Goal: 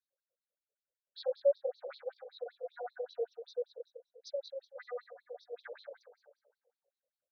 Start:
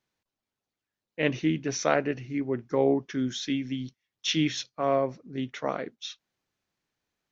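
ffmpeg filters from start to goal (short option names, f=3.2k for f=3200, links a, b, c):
-filter_complex "[0:a]acompressor=threshold=-32dB:ratio=2,asplit=3[a][b][c];[a]bandpass=f=300:t=q:w=8,volume=0dB[d];[b]bandpass=f=870:t=q:w=8,volume=-6dB[e];[c]bandpass=f=2.24k:t=q:w=8,volume=-9dB[f];[d][e][f]amix=inputs=3:normalize=0,aemphasis=mode=reproduction:type=50fm,bandreject=f=50:t=h:w=6,bandreject=f=100:t=h:w=6,bandreject=f=150:t=h:w=6,bandreject=f=200:t=h:w=6,bandreject=f=250:t=h:w=6,bandreject=f=300:t=h:w=6,asplit=2[g][h];[h]adelay=144,lowpass=f=1.5k:p=1,volume=-7dB,asplit=2[i][j];[j]adelay=144,lowpass=f=1.5k:p=1,volume=0.55,asplit=2[k][l];[l]adelay=144,lowpass=f=1.5k:p=1,volume=0.55,asplit=2[m][n];[n]adelay=144,lowpass=f=1.5k:p=1,volume=0.55,asplit=2[o][p];[p]adelay=144,lowpass=f=1.5k:p=1,volume=0.55,asplit=2[q][r];[r]adelay=144,lowpass=f=1.5k:p=1,volume=0.55,asplit=2[s][t];[t]adelay=144,lowpass=f=1.5k:p=1,volume=0.55[u];[i][k][m][o][q][s][u]amix=inputs=7:normalize=0[v];[g][v]amix=inputs=2:normalize=0,asetrate=78577,aresample=44100,atempo=0.561231,flanger=delay=20:depth=2.1:speed=0.49,afftfilt=real='re*between(b*sr/1024,480*pow(4600/480,0.5+0.5*sin(2*PI*5.2*pts/sr))/1.41,480*pow(4600/480,0.5+0.5*sin(2*PI*5.2*pts/sr))*1.41)':imag='im*between(b*sr/1024,480*pow(4600/480,0.5+0.5*sin(2*PI*5.2*pts/sr))/1.41,480*pow(4600/480,0.5+0.5*sin(2*PI*5.2*pts/sr))*1.41)':win_size=1024:overlap=0.75,volume=9dB"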